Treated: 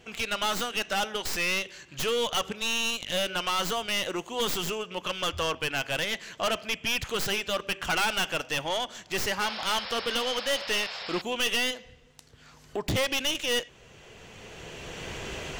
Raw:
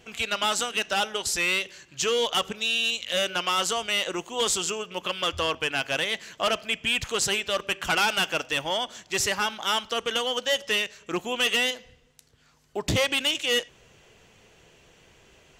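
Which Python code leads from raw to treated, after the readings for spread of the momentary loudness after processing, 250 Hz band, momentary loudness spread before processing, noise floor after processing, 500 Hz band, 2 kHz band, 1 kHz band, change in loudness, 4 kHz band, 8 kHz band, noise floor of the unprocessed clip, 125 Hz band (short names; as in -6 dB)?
10 LU, -0.5 dB, 6 LU, -54 dBFS, -2.0 dB, -3.0 dB, -2.0 dB, -3.0 dB, -3.0 dB, -4.5 dB, -59 dBFS, -0.5 dB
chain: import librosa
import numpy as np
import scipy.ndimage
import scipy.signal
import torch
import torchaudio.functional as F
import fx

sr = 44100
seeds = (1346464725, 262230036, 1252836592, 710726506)

y = fx.tracing_dist(x, sr, depth_ms=0.084)
y = fx.recorder_agc(y, sr, target_db=-26.0, rise_db_per_s=13.0, max_gain_db=30)
y = fx.high_shelf(y, sr, hz=6600.0, db=-5.0)
y = 10.0 ** (-21.5 / 20.0) * np.tanh(y / 10.0 ** (-21.5 / 20.0))
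y = fx.spec_paint(y, sr, seeds[0], shape='noise', start_s=9.4, length_s=1.82, low_hz=480.0, high_hz=5500.0, level_db=-38.0)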